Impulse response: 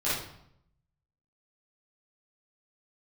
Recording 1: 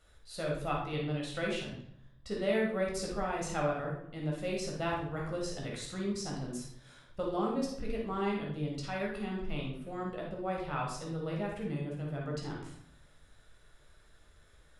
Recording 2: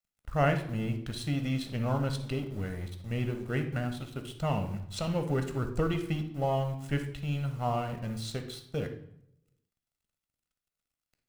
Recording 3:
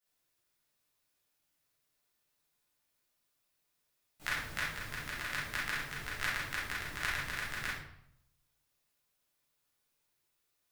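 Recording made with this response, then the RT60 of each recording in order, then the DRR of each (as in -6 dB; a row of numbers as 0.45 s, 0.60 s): 3; 0.70 s, 0.75 s, 0.70 s; -2.5 dB, 6.5 dB, -12.0 dB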